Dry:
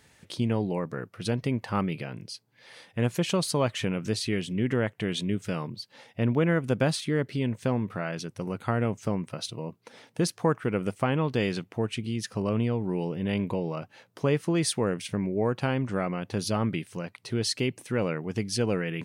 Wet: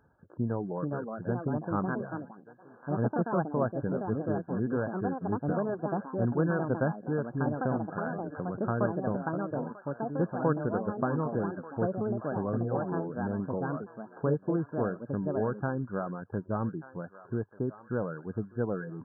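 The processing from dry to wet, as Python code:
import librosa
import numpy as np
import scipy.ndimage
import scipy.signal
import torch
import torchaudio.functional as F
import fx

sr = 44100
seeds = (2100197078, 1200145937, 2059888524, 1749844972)

p1 = fx.dereverb_blind(x, sr, rt60_s=0.62)
p2 = p1 + fx.echo_thinned(p1, sr, ms=1187, feedback_pct=53, hz=1100.0, wet_db=-12.0, dry=0)
p3 = fx.echo_pitch(p2, sr, ms=516, semitones=4, count=2, db_per_echo=-3.0)
p4 = fx.brickwall_lowpass(p3, sr, high_hz=1700.0)
p5 = fx.band_squash(p4, sr, depth_pct=70, at=(8.06, 8.55))
y = p5 * 10.0 ** (-3.5 / 20.0)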